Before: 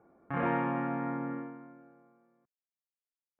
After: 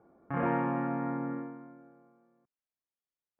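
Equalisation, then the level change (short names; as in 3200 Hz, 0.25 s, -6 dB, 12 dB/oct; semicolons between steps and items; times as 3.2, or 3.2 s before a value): air absorption 88 m; high shelf 2800 Hz -10.5 dB; +1.5 dB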